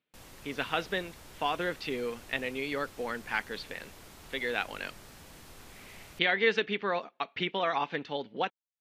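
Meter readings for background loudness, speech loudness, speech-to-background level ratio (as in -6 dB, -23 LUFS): -51.0 LUFS, -32.5 LUFS, 18.5 dB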